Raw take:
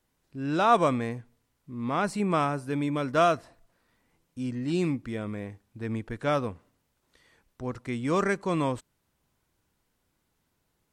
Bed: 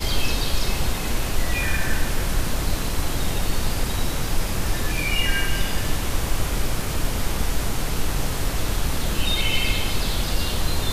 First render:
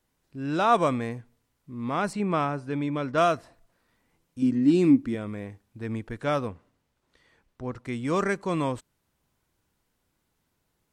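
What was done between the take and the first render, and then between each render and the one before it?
0:02.13–0:03.18: high-frequency loss of the air 83 metres
0:04.42–0:05.15: hollow resonant body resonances 280 Hz, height 14 dB
0:06.47–0:07.84: high-shelf EQ 8,500 Hz → 6,000 Hz −10 dB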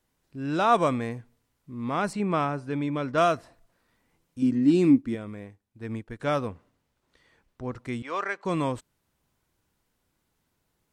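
0:04.98–0:06.20: expander for the loud parts, over −52 dBFS
0:08.02–0:08.45: band-pass filter 690–3,800 Hz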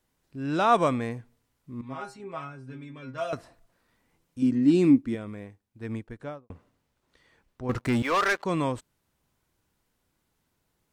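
0:01.81–0:03.33: stiff-string resonator 130 Hz, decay 0.27 s, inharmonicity 0.002
0:05.96–0:06.50: fade out and dull
0:07.69–0:08.44: leveller curve on the samples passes 3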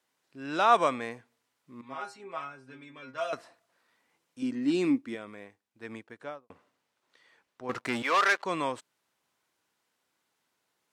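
meter weighting curve A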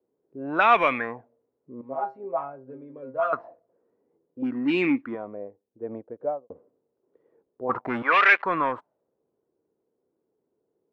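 in parallel at −5 dB: soft clipping −26 dBFS, distortion −7 dB
on the sum: envelope-controlled low-pass 420–2,400 Hz up, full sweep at −21 dBFS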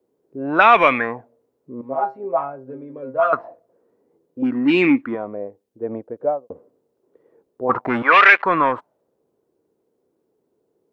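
level +7.5 dB
brickwall limiter −1 dBFS, peak gain reduction 2.5 dB

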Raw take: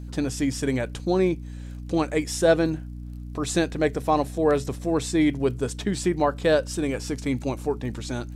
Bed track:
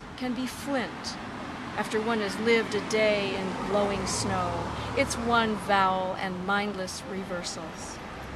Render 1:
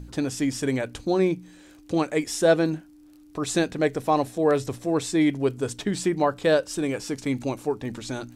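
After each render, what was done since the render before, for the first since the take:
hum removal 60 Hz, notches 4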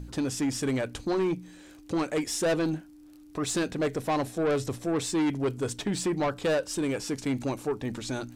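soft clipping −22 dBFS, distortion −9 dB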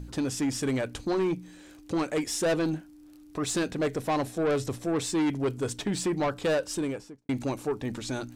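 0:06.70–0:07.29: fade out and dull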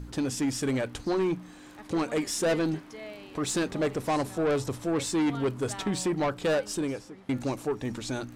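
mix in bed track −18.5 dB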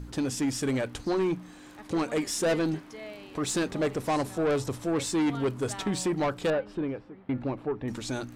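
0:06.50–0:07.88: high-frequency loss of the air 440 metres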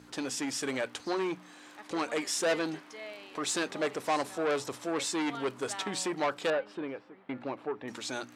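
meter weighting curve A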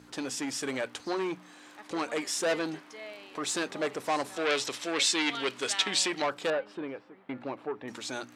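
0:04.36–0:06.22: meter weighting curve D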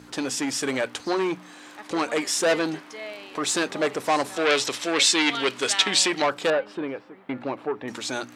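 level +7 dB

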